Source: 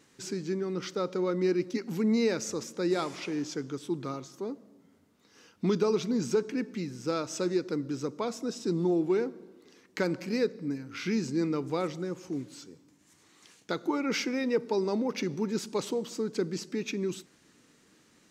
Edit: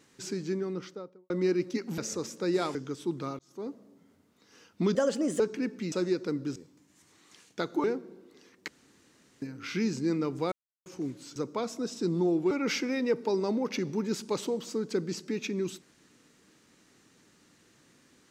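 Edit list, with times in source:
0:00.52–0:01.30: fade out and dull
0:01.98–0:02.35: remove
0:03.12–0:03.58: remove
0:04.22–0:04.53: fade in
0:05.78–0:06.35: play speed 127%
0:06.87–0:07.36: remove
0:08.00–0:09.15: swap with 0:12.67–0:13.95
0:09.99–0:10.73: fill with room tone
0:11.83–0:12.17: silence

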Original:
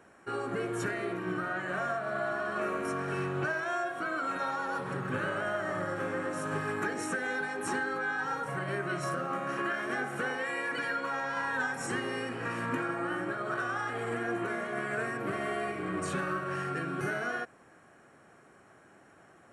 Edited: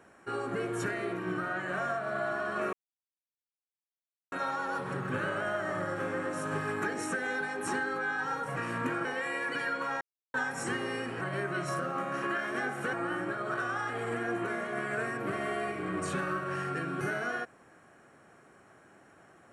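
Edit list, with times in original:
0:02.73–0:04.32: silence
0:08.56–0:10.28: swap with 0:12.44–0:12.93
0:11.24–0:11.57: silence

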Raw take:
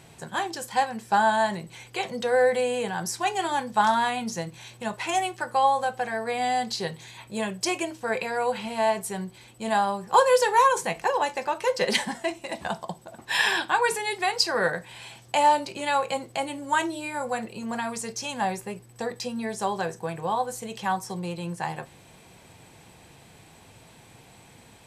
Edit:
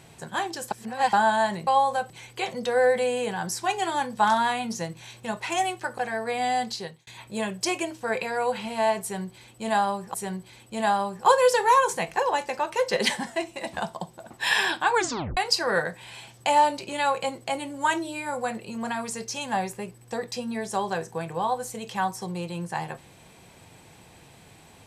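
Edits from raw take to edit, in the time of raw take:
0:00.71–0:01.13: reverse
0:05.55–0:05.98: move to 0:01.67
0:06.63–0:07.07: fade out
0:09.02–0:10.14: repeat, 2 plays
0:13.83: tape stop 0.42 s

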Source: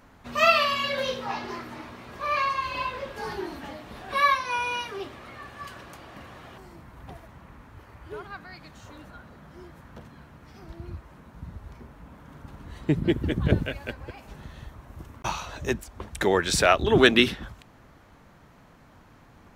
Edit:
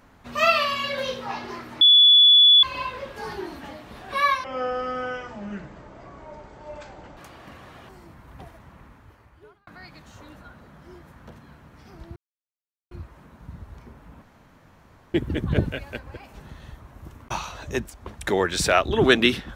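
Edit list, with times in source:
0:01.81–0:02.63: beep over 3,430 Hz −10 dBFS
0:04.44–0:05.86: play speed 52%
0:07.49–0:08.36: fade out
0:10.85: splice in silence 0.75 s
0:12.16–0:13.08: fill with room tone

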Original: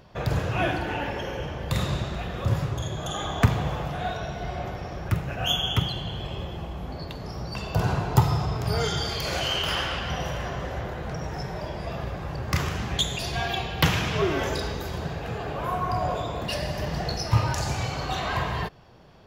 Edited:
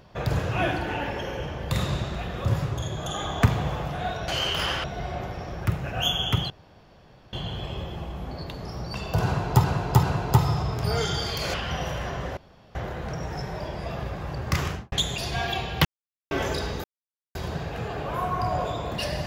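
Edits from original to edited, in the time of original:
0:05.94: splice in room tone 0.83 s
0:07.86–0:08.25: repeat, 3 plays
0:09.37–0:09.93: move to 0:04.28
0:10.76: splice in room tone 0.38 s
0:12.68–0:12.93: fade out and dull
0:13.86–0:14.32: silence
0:14.85: splice in silence 0.51 s

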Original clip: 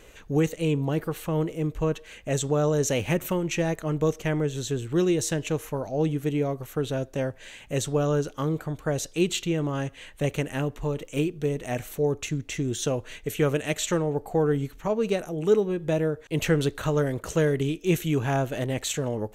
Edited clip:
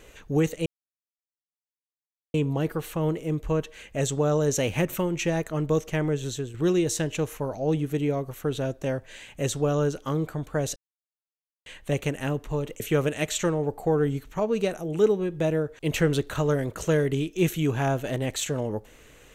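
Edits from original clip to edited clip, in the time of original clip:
0:00.66: splice in silence 1.68 s
0:04.60–0:04.86: fade out, to −8.5 dB
0:09.08–0:09.98: silence
0:11.12–0:13.28: remove

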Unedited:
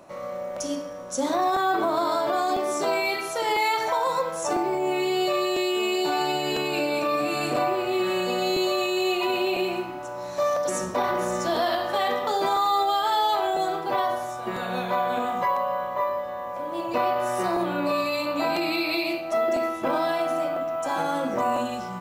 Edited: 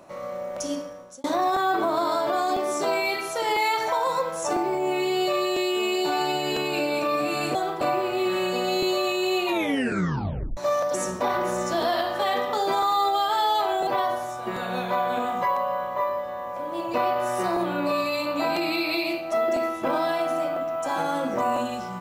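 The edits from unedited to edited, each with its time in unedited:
0:00.80–0:01.24: fade out linear
0:09.20: tape stop 1.11 s
0:13.61–0:13.87: move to 0:07.55

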